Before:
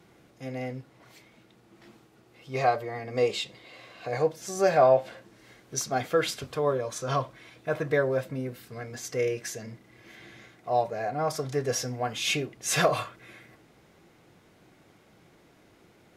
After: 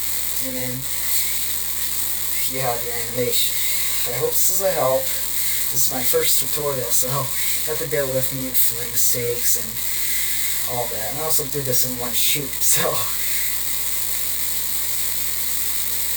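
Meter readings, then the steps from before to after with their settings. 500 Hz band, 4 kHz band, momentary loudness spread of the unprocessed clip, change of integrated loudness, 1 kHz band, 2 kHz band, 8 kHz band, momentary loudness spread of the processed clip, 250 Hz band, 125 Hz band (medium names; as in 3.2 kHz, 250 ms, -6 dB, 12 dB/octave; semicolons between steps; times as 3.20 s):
+1.5 dB, +12.5 dB, 16 LU, +10.5 dB, -0.5 dB, +6.5 dB, +18.0 dB, 5 LU, +2.5 dB, +3.5 dB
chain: zero-crossing glitches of -15.5 dBFS; treble shelf 9.9 kHz +7 dB; chorus 2 Hz, delay 19 ms, depth 4.8 ms; rippled EQ curve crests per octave 1, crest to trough 9 dB; hum 60 Hz, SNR 23 dB; trim +3 dB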